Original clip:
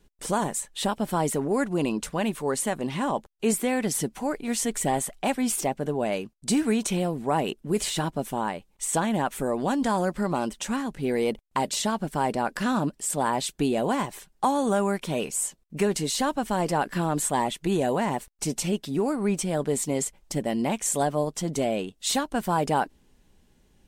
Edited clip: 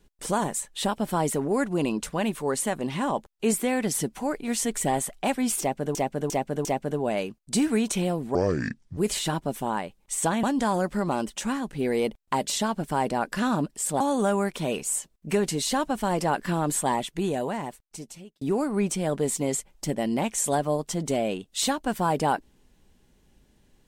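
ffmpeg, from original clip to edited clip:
ffmpeg -i in.wav -filter_complex "[0:a]asplit=9[link_01][link_02][link_03][link_04][link_05][link_06][link_07][link_08][link_09];[link_01]atrim=end=5.952[link_10];[link_02]atrim=start=5.598:end=5.952[link_11];[link_03]atrim=start=5.598:end=5.952[link_12];[link_04]atrim=start=5.598:end=7.304[link_13];[link_05]atrim=start=7.3:end=7.68,asetpts=PTS-STARTPTS,asetrate=26901,aresample=44100,atrim=end_sample=27472,asetpts=PTS-STARTPTS[link_14];[link_06]atrim=start=7.676:end=9.142[link_15];[link_07]atrim=start=9.668:end=13.242[link_16];[link_08]atrim=start=14.478:end=18.89,asetpts=PTS-STARTPTS,afade=type=out:start_time=2.872:duration=1.54[link_17];[link_09]atrim=start=18.89,asetpts=PTS-STARTPTS,afade=type=in:duration=0.004:curve=hsin[link_18];[link_10][link_11]acrossfade=duration=0.004:curve1=hsin:curve2=hsin[link_19];[link_19][link_12]acrossfade=duration=0.004:curve1=hsin:curve2=hsin[link_20];[link_20][link_13]acrossfade=duration=0.004:curve1=hsin:curve2=hsin[link_21];[link_21][link_14]acrossfade=duration=0.004:curve1=hsin:curve2=hsin[link_22];[link_22][link_15]acrossfade=duration=0.004:curve1=hsin:curve2=hsin[link_23];[link_23][link_16]acrossfade=duration=0.004:curve1=hsin:curve2=hsin[link_24];[link_17][link_18]concat=n=2:v=0:a=1[link_25];[link_24][link_25]acrossfade=duration=0.004:curve1=hsin:curve2=hsin" out.wav

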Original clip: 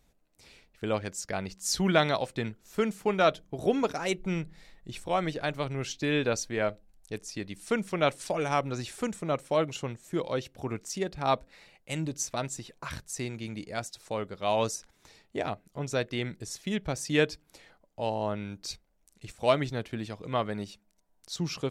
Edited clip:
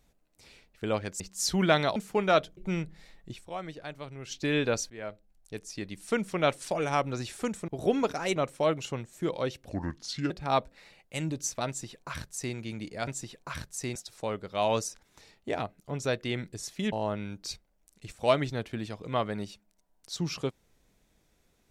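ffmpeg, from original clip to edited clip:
ffmpeg -i in.wav -filter_complex "[0:a]asplit=14[link_01][link_02][link_03][link_04][link_05][link_06][link_07][link_08][link_09][link_10][link_11][link_12][link_13][link_14];[link_01]atrim=end=1.202[link_15];[link_02]atrim=start=1.458:end=2.222[link_16];[link_03]atrim=start=2.868:end=3.482[link_17];[link_04]atrim=start=4.158:end=5.21,asetpts=PTS-STARTPTS,afade=type=out:start_time=0.752:duration=0.3:curve=exp:silence=0.334965[link_18];[link_05]atrim=start=5.21:end=5.62,asetpts=PTS-STARTPTS,volume=-9.5dB[link_19];[link_06]atrim=start=5.62:end=6.49,asetpts=PTS-STARTPTS,afade=type=in:duration=0.3:curve=exp:silence=0.334965,afade=type=out:start_time=0.866:duration=0.004:curve=hsin:silence=0.16788[link_20];[link_07]atrim=start=6.49:end=9.272,asetpts=PTS-STARTPTS,afade=type=in:duration=1.33:curve=qsin:silence=0.16788[link_21];[link_08]atrim=start=3.478:end=4.162[link_22];[link_09]atrim=start=9.268:end=10.604[link_23];[link_10]atrim=start=10.6:end=11.06,asetpts=PTS-STARTPTS,asetrate=33075,aresample=44100[link_24];[link_11]atrim=start=11.056:end=13.832[link_25];[link_12]atrim=start=12.428:end=13.312[link_26];[link_13]atrim=start=13.828:end=16.802[link_27];[link_14]atrim=start=18.118[link_28];[link_15][link_16]acrossfade=duration=0.004:curve1=hsin:curve2=hsin[link_29];[link_29][link_17]acrossfade=duration=0.004:curve1=hsin:curve2=hsin[link_30];[link_18][link_19][link_20][link_21]concat=n=4:v=0:a=1[link_31];[link_30][link_31]acrossfade=duration=0.004:curve1=hsin:curve2=hsin[link_32];[link_32][link_22]acrossfade=duration=0.004:curve1=hsin:curve2=hsin[link_33];[link_33][link_23]acrossfade=duration=0.004:curve1=hsin:curve2=hsin[link_34];[link_34][link_24]acrossfade=duration=0.004:curve1=hsin:curve2=hsin[link_35];[link_35][link_25]acrossfade=duration=0.004:curve1=hsin:curve2=hsin[link_36];[link_36][link_26]acrossfade=duration=0.004:curve1=hsin:curve2=hsin[link_37];[link_37][link_27]acrossfade=duration=0.004:curve1=hsin:curve2=hsin[link_38];[link_38][link_28]acrossfade=duration=0.004:curve1=hsin:curve2=hsin" out.wav

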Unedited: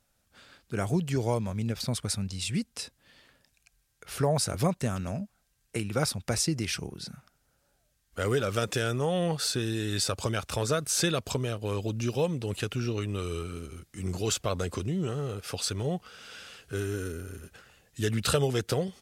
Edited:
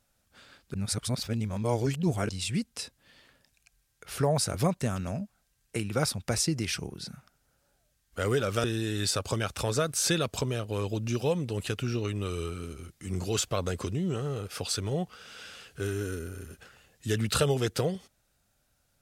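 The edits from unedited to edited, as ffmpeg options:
ffmpeg -i in.wav -filter_complex "[0:a]asplit=4[link_01][link_02][link_03][link_04];[link_01]atrim=end=0.742[link_05];[link_02]atrim=start=0.738:end=2.292,asetpts=PTS-STARTPTS,areverse[link_06];[link_03]atrim=start=2.288:end=8.642[link_07];[link_04]atrim=start=9.568[link_08];[link_05][link_06]acrossfade=duration=0.004:curve1=hsin:curve2=hsin[link_09];[link_09][link_07]acrossfade=duration=0.004:curve1=hsin:curve2=hsin[link_10];[link_10][link_08]acrossfade=duration=0.004:curve1=hsin:curve2=hsin" out.wav

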